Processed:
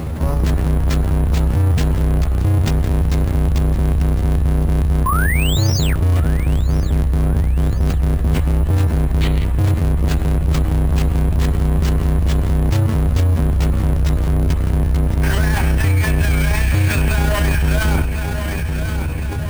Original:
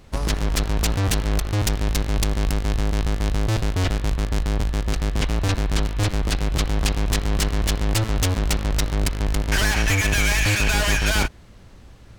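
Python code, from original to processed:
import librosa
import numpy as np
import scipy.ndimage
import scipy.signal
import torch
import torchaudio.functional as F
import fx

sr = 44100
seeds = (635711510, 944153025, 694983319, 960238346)

p1 = scipy.signal.sosfilt(scipy.signal.butter(4, 57.0, 'highpass', fs=sr, output='sos'), x)
p2 = fx.low_shelf(p1, sr, hz=170.0, db=9.5)
p3 = fx.spec_paint(p2, sr, seeds[0], shape='rise', start_s=3.16, length_s=0.56, low_hz=1000.0, high_hz=10000.0, level_db=-19.0)
p4 = fx.high_shelf(p3, sr, hz=2100.0, db=-12.0)
p5 = p4 + fx.echo_feedback(p4, sr, ms=661, feedback_pct=42, wet_db=-18.5, dry=0)
p6 = fx.stretch_grains(p5, sr, factor=1.6, grain_ms=67.0)
p7 = np.repeat(p6[::4], 4)[:len(p6)]
p8 = fx.spec_box(p7, sr, start_s=9.21, length_s=0.24, low_hz=1800.0, high_hz=4600.0, gain_db=9)
y = fx.env_flatten(p8, sr, amount_pct=70)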